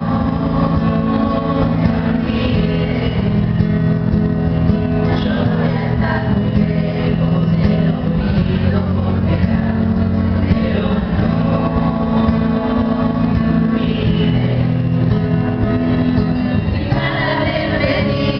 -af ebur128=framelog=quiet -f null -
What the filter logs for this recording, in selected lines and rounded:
Integrated loudness:
  I:         -16.0 LUFS
  Threshold: -26.0 LUFS
Loudness range:
  LRA:         0.5 LU
  Threshold: -36.0 LUFS
  LRA low:   -16.2 LUFS
  LRA high:  -15.7 LUFS